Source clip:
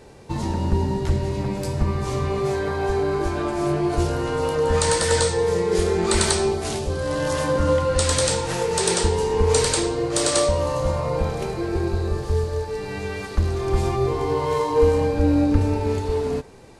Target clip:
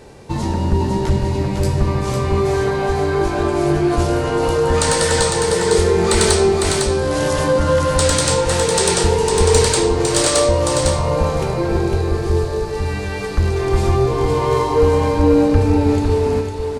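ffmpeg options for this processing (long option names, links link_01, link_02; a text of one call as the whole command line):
ffmpeg -i in.wav -af "acontrast=47,aecho=1:1:504:0.596,volume=-1dB" out.wav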